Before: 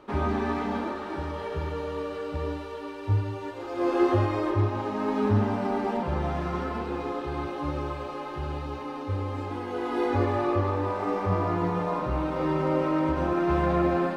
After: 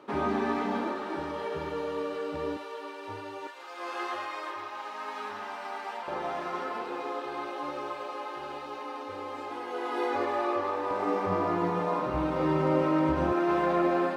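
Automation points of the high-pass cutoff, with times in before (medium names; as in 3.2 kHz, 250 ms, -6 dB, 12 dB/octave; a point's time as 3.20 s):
190 Hz
from 2.57 s 460 Hz
from 3.47 s 1.1 kHz
from 6.08 s 460 Hz
from 10.91 s 200 Hz
from 12.14 s 75 Hz
from 13.32 s 280 Hz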